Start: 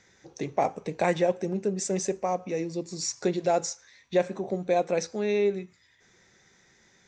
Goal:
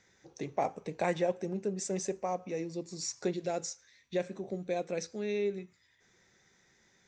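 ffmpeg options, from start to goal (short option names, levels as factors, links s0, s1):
-filter_complex "[0:a]asettb=1/sr,asplit=3[s0][s1][s2];[s0]atrim=end=3.334[s3];[s1]atrim=start=3.33:end=5.58,asetpts=PTS-STARTPTS,afade=t=in:d=0.004:c=qsin,afade=t=out:st=2.246:d=0.004:c=qsin,equalizer=f=880:t=o:w=1.2:g=-7.5[s4];[s2]atrim=start=5.576[s5];[s3][s4]acrossfade=d=0.004:c1=hsin:c2=qsin[s6];[s6][s5]acrossfade=d=0.004:c1=qsin:c2=hsin,volume=0.501"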